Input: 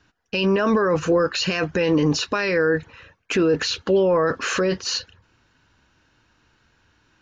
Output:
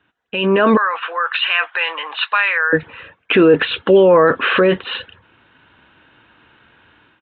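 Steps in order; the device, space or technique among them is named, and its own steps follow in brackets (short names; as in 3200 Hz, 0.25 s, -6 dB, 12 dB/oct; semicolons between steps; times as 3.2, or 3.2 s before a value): 0.77–2.73 HPF 900 Hz 24 dB/oct; Bluetooth headset (HPF 230 Hz 6 dB/oct; AGC gain up to 12.5 dB; downsampling 8000 Hz; SBC 64 kbps 16000 Hz)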